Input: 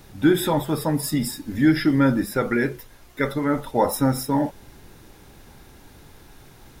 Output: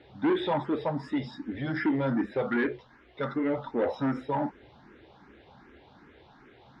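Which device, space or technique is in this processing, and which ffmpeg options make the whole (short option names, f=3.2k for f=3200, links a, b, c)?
barber-pole phaser into a guitar amplifier: -filter_complex "[0:a]asplit=2[a][b];[b]afreqshift=2.6[c];[a][c]amix=inputs=2:normalize=1,asoftclip=type=tanh:threshold=-20.5dB,highpass=95,equalizer=f=100:t=q:w=4:g=-9,equalizer=f=160:t=q:w=4:g=-7,equalizer=f=2.6k:t=q:w=4:g=-4,lowpass=f=3.4k:w=0.5412,lowpass=f=3.4k:w=1.3066"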